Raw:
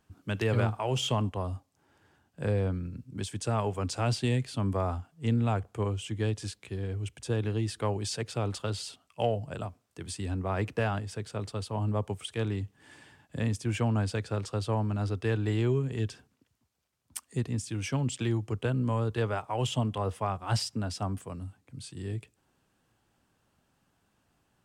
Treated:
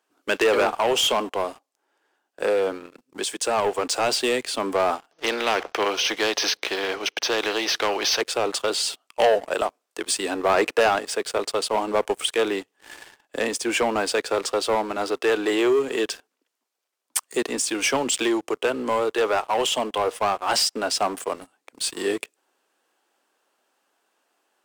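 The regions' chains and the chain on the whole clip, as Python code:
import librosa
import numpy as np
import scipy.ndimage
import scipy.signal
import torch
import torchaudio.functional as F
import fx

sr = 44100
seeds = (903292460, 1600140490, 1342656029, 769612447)

y = fx.chain(x, sr, fx.brickwall_lowpass(high_hz=6400.0),
    fx.spectral_comp(ratio=2.0), at=(5.11, 8.21))
y = scipy.signal.sosfilt(scipy.signal.butter(4, 360.0, 'highpass', fs=sr, output='sos'), y)
y = fx.leveller(y, sr, passes=3)
y = fx.rider(y, sr, range_db=10, speed_s=2.0)
y = y * librosa.db_to_amplitude(3.5)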